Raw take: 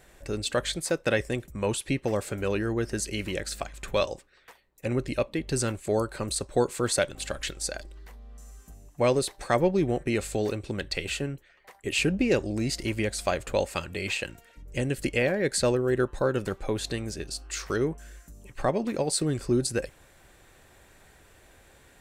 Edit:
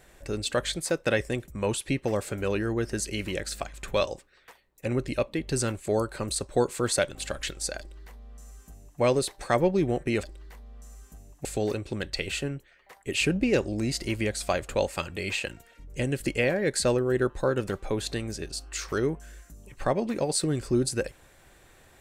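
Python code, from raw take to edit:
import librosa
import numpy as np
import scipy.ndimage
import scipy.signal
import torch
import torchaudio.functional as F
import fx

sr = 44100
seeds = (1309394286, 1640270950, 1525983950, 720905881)

y = fx.edit(x, sr, fx.duplicate(start_s=7.79, length_s=1.22, to_s=10.23), tone=tone)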